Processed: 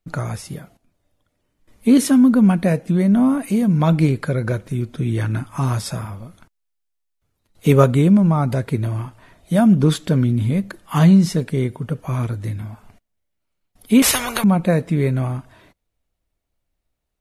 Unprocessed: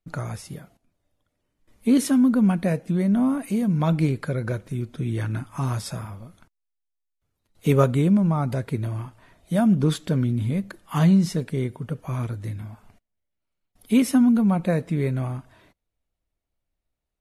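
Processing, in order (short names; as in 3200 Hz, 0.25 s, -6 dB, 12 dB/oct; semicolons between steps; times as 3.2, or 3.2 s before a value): 14.02–14.44 spectral compressor 10:1; gain +5.5 dB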